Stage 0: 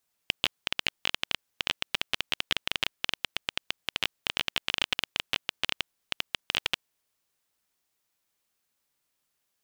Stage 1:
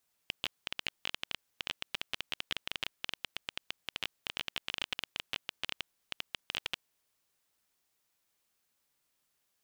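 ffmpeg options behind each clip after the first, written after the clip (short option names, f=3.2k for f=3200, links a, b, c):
-af "alimiter=limit=-16dB:level=0:latency=1:release=25"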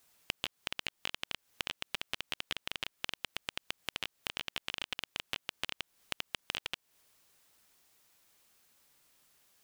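-af "acompressor=threshold=-43dB:ratio=10,volume=10.5dB"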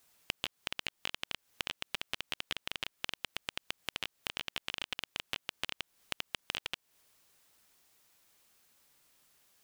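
-af anull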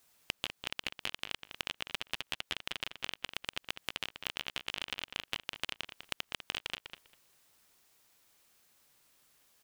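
-filter_complex "[0:a]asplit=2[a][b];[b]adelay=199,lowpass=f=4k:p=1,volume=-8dB,asplit=2[c][d];[d]adelay=199,lowpass=f=4k:p=1,volume=0.17,asplit=2[e][f];[f]adelay=199,lowpass=f=4k:p=1,volume=0.17[g];[a][c][e][g]amix=inputs=4:normalize=0"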